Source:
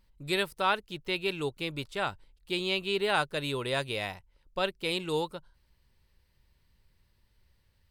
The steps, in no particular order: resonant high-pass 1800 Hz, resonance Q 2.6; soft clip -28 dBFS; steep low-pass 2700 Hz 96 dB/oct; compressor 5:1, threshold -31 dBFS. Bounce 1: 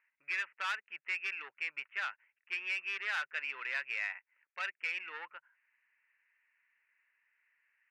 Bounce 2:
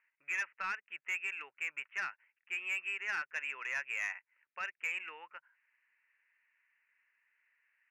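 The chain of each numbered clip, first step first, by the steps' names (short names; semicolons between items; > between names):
steep low-pass > soft clip > resonant high-pass > compressor; steep low-pass > compressor > resonant high-pass > soft clip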